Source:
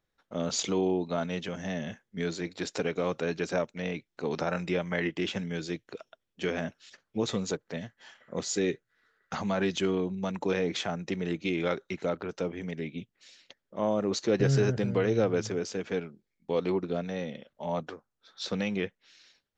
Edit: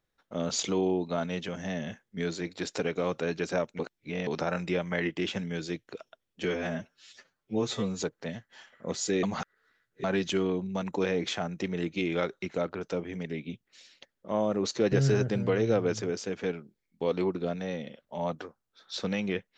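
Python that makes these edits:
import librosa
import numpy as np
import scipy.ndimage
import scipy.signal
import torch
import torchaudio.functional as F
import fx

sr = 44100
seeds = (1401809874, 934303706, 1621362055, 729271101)

y = fx.edit(x, sr, fx.reverse_span(start_s=3.79, length_s=0.48),
    fx.stretch_span(start_s=6.44, length_s=1.04, factor=1.5),
    fx.reverse_span(start_s=8.71, length_s=0.81), tone=tone)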